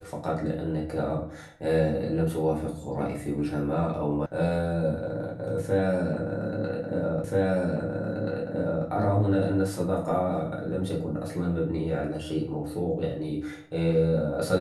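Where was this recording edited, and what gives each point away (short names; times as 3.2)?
4.26 sound cut off
7.24 repeat of the last 1.63 s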